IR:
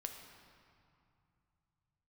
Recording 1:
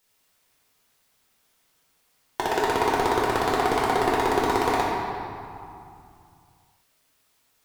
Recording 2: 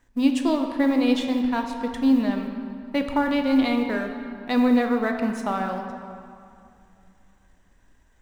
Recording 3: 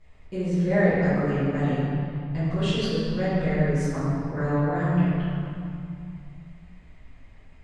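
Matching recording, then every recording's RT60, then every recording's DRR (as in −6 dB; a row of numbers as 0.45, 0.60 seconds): 2; 2.5, 2.4, 2.5 seconds; −5.5, 3.5, −15.5 decibels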